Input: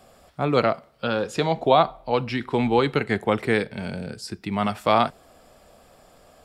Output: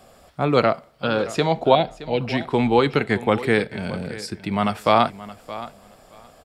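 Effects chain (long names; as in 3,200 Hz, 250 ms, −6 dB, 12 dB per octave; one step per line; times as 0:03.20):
0:01.75–0:02.21: phaser with its sweep stopped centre 2,800 Hz, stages 4
on a send: repeating echo 621 ms, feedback 16%, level −16 dB
on the sum: level +2.5 dB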